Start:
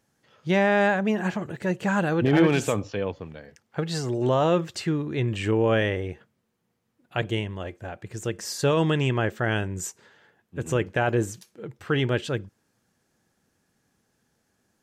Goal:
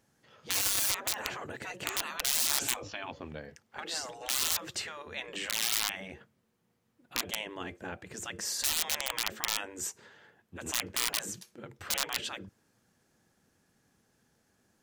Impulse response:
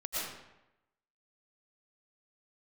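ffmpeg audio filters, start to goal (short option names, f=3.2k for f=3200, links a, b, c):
-af "aeval=exprs='(mod(5.62*val(0)+1,2)-1)/5.62':c=same,afftfilt=real='re*lt(hypot(re,im),0.0794)':imag='im*lt(hypot(re,im),0.0794)':win_size=1024:overlap=0.75"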